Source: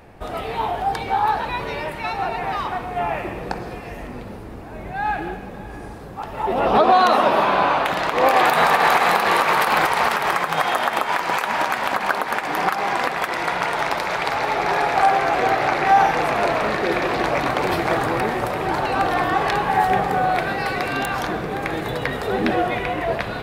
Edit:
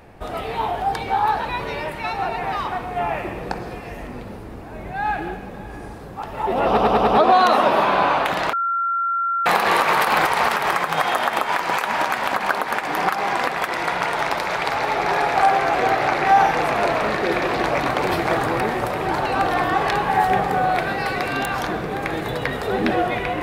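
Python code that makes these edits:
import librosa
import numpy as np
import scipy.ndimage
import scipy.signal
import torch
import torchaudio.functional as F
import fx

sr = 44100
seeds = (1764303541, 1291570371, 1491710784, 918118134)

y = fx.edit(x, sr, fx.stutter(start_s=6.67, slice_s=0.1, count=5),
    fx.bleep(start_s=8.13, length_s=0.93, hz=1370.0, db=-18.5), tone=tone)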